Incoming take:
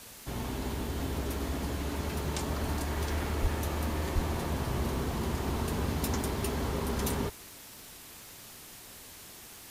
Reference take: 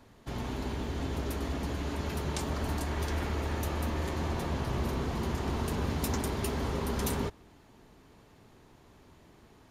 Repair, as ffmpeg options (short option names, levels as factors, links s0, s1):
-filter_complex "[0:a]adeclick=t=4,asplit=3[s0][s1][s2];[s0]afade=t=out:st=3.41:d=0.02[s3];[s1]highpass=f=140:w=0.5412,highpass=f=140:w=1.3066,afade=t=in:st=3.41:d=0.02,afade=t=out:st=3.53:d=0.02[s4];[s2]afade=t=in:st=3.53:d=0.02[s5];[s3][s4][s5]amix=inputs=3:normalize=0,asplit=3[s6][s7][s8];[s6]afade=t=out:st=4.14:d=0.02[s9];[s7]highpass=f=140:w=0.5412,highpass=f=140:w=1.3066,afade=t=in:st=4.14:d=0.02,afade=t=out:st=4.26:d=0.02[s10];[s8]afade=t=in:st=4.26:d=0.02[s11];[s9][s10][s11]amix=inputs=3:normalize=0,afftdn=nr=9:nf=-49"